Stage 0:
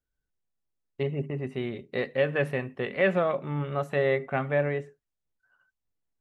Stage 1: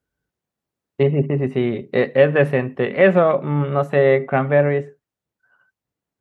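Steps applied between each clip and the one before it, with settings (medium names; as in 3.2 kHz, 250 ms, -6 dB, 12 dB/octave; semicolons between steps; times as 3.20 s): in parallel at +1 dB: gain riding 2 s; on the sum: high-pass 95 Hz; treble shelf 2.1 kHz -9 dB; trim +5 dB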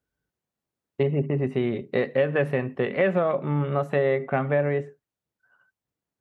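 compression 3:1, threshold -16 dBFS, peak gain reduction 7 dB; trim -3.5 dB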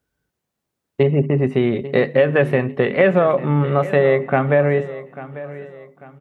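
feedback delay 844 ms, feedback 37%, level -16 dB; trim +7.5 dB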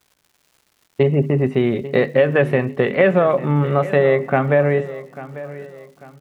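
crackle 290 per s -44 dBFS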